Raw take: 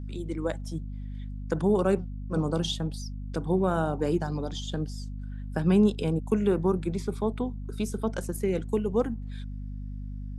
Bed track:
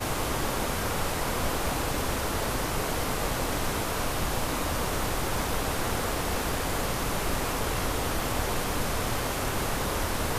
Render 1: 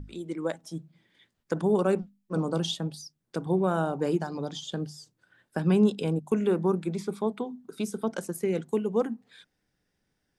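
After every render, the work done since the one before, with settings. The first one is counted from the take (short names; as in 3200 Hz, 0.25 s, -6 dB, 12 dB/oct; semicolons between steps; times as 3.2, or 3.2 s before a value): notches 50/100/150/200/250 Hz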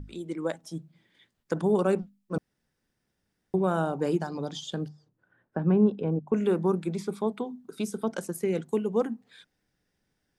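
2.38–3.54 room tone; 4.88–6.34 LPF 1300 Hz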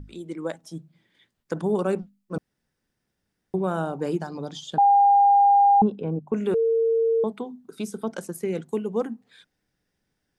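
4.78–5.82 bleep 805 Hz -13 dBFS; 6.54–7.24 bleep 455 Hz -18 dBFS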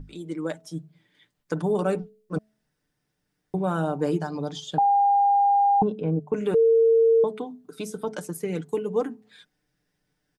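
comb 6.7 ms, depth 52%; de-hum 215.6 Hz, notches 3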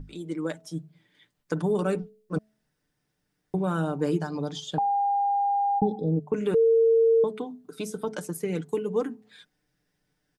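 5.82–6.13 spectral repair 710–3300 Hz both; dynamic EQ 720 Hz, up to -6 dB, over -35 dBFS, Q 1.7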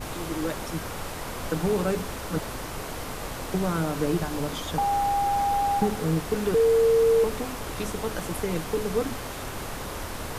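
add bed track -5.5 dB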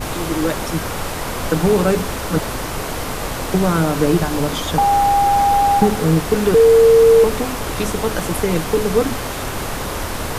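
gain +10 dB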